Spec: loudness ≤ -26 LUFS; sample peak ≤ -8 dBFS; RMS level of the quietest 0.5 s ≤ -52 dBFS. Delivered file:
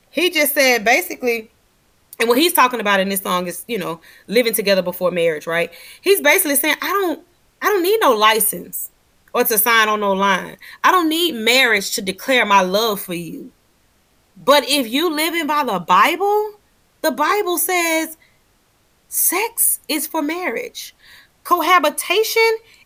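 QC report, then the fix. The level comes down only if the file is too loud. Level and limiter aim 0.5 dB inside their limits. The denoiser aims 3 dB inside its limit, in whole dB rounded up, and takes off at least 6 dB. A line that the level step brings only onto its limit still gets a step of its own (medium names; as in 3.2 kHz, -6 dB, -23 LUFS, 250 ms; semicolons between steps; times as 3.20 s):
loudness -16.5 LUFS: fail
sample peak -2.5 dBFS: fail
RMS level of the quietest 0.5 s -59 dBFS: pass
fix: trim -10 dB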